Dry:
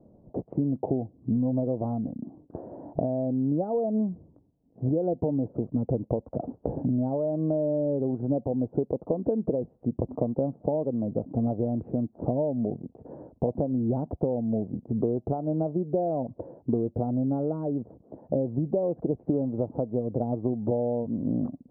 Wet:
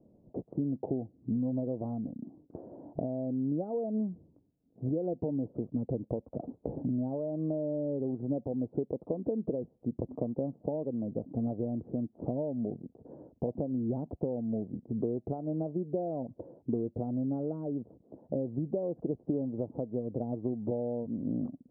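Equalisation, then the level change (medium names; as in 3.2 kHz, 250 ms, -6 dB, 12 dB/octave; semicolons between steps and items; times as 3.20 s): low-pass 1 kHz 12 dB/octave; bass shelf 180 Hz -8.5 dB; peaking EQ 790 Hz -6.5 dB 1.8 oct; -1.0 dB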